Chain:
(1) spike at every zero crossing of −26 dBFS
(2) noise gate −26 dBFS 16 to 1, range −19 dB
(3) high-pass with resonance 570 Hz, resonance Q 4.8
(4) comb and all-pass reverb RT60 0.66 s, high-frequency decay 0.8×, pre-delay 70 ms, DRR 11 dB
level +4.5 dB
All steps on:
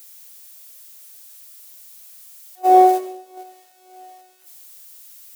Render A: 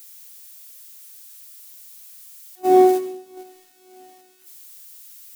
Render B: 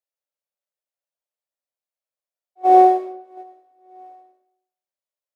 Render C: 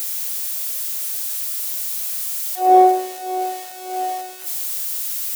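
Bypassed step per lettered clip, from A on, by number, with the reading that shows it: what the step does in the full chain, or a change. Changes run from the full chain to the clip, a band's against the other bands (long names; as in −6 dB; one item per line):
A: 3, 1 kHz band −7.0 dB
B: 1, distortion level −2 dB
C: 2, change in momentary loudness spread +2 LU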